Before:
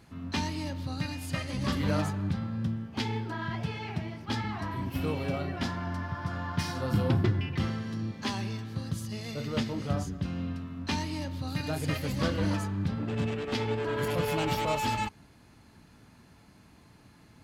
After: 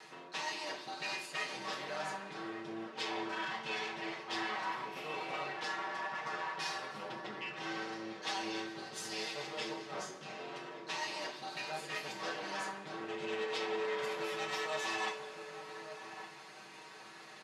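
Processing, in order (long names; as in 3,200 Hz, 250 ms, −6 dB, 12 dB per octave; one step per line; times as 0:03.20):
lower of the sound and its delayed copy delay 6.4 ms
comb filter 5.3 ms, depth 51%
reversed playback
downward compressor 12 to 1, threshold −42 dBFS, peak gain reduction 21.5 dB
reversed playback
band-pass filter 550–6,900 Hz
slap from a distant wall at 200 metres, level −9 dB
on a send at −1.5 dB: convolution reverb, pre-delay 3 ms
on the sum: level +8 dB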